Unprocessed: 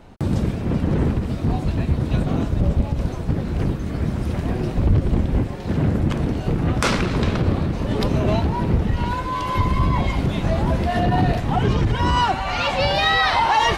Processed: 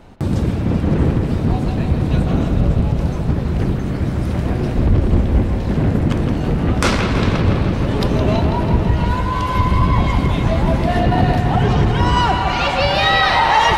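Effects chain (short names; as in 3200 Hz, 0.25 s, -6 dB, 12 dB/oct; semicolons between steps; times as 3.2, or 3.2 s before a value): dark delay 0.164 s, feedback 71%, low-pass 3700 Hz, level -6 dB; gain +2.5 dB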